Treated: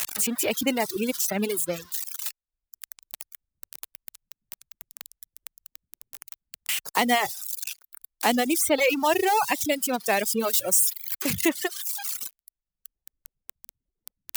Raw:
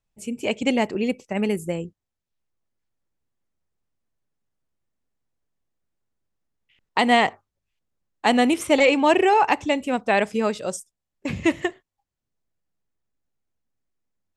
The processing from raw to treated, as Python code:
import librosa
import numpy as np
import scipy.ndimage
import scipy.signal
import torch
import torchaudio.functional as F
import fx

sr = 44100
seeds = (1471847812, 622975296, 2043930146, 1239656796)

y = x + 0.5 * 10.0 ** (-14.0 / 20.0) * np.diff(np.sign(x), prepend=np.sign(x[:1]))
y = fx.dereverb_blind(y, sr, rt60_s=0.78)
y = fx.high_shelf(y, sr, hz=fx.line((10.39, 7800.0), (11.48, 4700.0)), db=8.5, at=(10.39, 11.48), fade=0.02)
y = fx.dereverb_blind(y, sr, rt60_s=1.6)
y = fx.cheby_harmonics(y, sr, harmonics=(3,), levels_db=(-38,), full_scale_db=-4.5)
y = fx.band_squash(y, sr, depth_pct=40)
y = y * 10.0 ** (-2.0 / 20.0)